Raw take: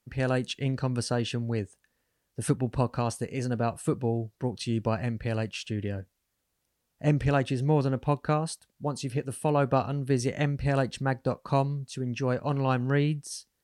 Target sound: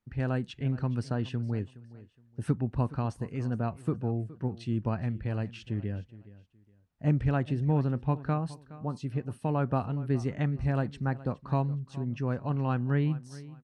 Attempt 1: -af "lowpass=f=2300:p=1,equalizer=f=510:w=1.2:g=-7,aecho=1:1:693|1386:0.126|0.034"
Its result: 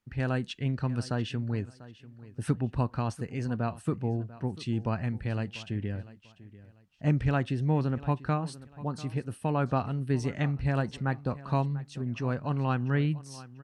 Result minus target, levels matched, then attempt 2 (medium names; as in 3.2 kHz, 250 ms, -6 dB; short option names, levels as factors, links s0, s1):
echo 275 ms late; 2 kHz band +4.0 dB
-af "lowpass=f=1000:p=1,equalizer=f=510:w=1.2:g=-7,aecho=1:1:418|836:0.126|0.034"